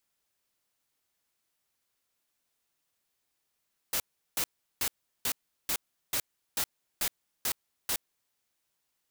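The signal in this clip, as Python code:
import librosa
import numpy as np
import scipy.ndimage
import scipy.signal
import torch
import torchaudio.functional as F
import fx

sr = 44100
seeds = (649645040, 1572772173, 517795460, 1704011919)

y = fx.noise_burst(sr, seeds[0], colour='white', on_s=0.07, off_s=0.37, bursts=10, level_db=-29.5)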